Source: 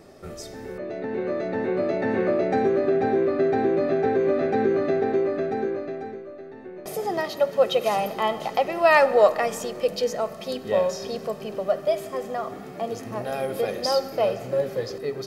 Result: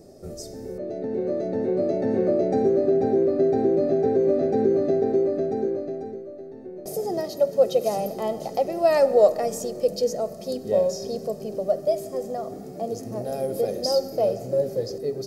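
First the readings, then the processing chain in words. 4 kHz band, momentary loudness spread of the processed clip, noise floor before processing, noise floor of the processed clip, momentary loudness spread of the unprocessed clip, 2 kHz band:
−3.0 dB, 13 LU, −40 dBFS, −39 dBFS, 13 LU, −13.5 dB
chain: flat-topped bell 1,800 Hz −15 dB 2.3 octaves
level +1.5 dB

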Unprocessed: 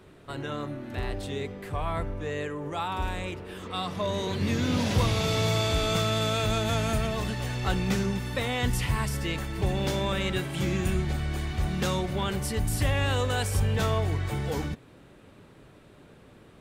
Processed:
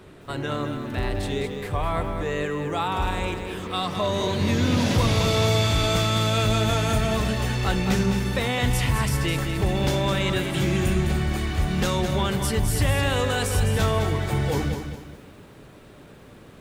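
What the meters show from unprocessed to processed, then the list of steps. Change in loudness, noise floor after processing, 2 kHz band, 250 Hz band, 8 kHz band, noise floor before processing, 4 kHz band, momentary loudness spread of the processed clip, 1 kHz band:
+5.0 dB, −47 dBFS, +5.0 dB, +5.0 dB, +5.0 dB, −53 dBFS, +4.5 dB, 8 LU, +5.0 dB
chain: in parallel at −1 dB: brickwall limiter −22 dBFS, peak gain reduction 7.5 dB
on the sum: feedback echo at a low word length 209 ms, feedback 35%, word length 9 bits, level −7.5 dB

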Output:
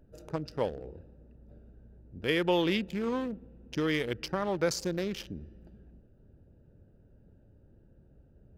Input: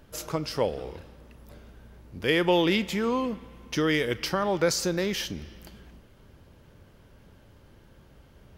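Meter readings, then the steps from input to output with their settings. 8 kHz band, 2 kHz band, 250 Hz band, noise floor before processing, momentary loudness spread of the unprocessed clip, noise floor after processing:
−8.5 dB, −6.0 dB, −4.5 dB, −55 dBFS, 17 LU, −60 dBFS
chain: adaptive Wiener filter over 41 samples
level −4 dB

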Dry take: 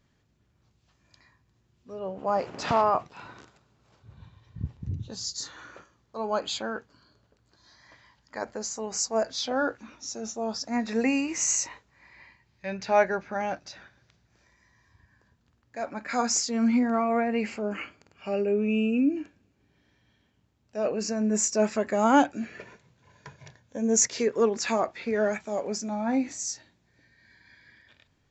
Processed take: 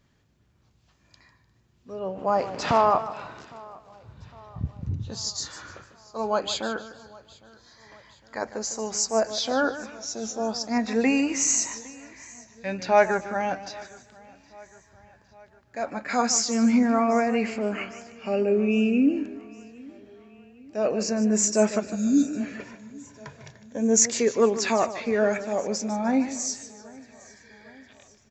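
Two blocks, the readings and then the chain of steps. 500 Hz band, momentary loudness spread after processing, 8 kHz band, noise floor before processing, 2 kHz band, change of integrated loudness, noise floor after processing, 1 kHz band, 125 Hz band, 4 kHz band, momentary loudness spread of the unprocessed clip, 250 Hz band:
+3.0 dB, 21 LU, +3.0 dB, −69 dBFS, +2.5 dB, +3.0 dB, −63 dBFS, +2.0 dB, +3.5 dB, +3.0 dB, 16 LU, +3.5 dB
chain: healed spectral selection 0:21.82–0:22.30, 380–3,500 Hz after
repeating echo 808 ms, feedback 57%, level −23.5 dB
feedback echo with a swinging delay time 151 ms, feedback 37%, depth 95 cents, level −13.5 dB
level +3 dB

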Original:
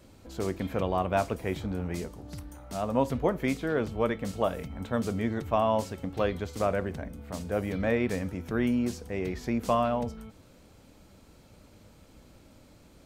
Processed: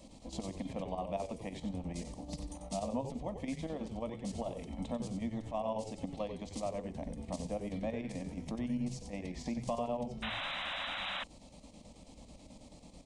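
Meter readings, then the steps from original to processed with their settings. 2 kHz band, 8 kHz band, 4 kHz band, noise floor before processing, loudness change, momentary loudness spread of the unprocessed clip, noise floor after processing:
−6.5 dB, −3.5 dB, +1.5 dB, −56 dBFS, −9.0 dB, 12 LU, −56 dBFS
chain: downward compressor 5 to 1, threshold −36 dBFS, peak gain reduction 15 dB
square-wave tremolo 9.2 Hz, depth 60%, duty 70%
downsampling to 22,050 Hz
phaser with its sweep stopped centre 400 Hz, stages 6
echo with shifted repeats 92 ms, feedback 31%, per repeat −110 Hz, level −8 dB
sound drawn into the spectrogram noise, 0:10.22–0:11.24, 520–4,000 Hz −43 dBFS
level +4 dB

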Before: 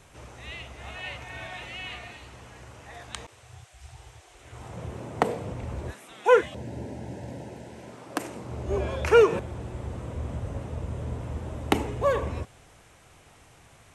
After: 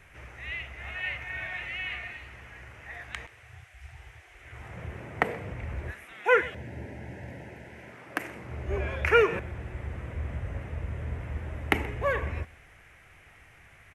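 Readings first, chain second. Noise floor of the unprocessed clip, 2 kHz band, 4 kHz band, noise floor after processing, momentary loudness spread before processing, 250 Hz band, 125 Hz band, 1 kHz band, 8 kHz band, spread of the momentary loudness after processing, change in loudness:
−55 dBFS, +5.0 dB, −2.0 dB, −55 dBFS, 24 LU, −5.5 dB, −1.5 dB, −2.5 dB, can't be measured, 23 LU, −2.5 dB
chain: octave-band graphic EQ 125/250/500/1,000/2,000/4,000/8,000 Hz −4/−7/−5/−7/+10/−10/−12 dB
on a send: single-tap delay 128 ms −21.5 dB
on the sum: level +2 dB

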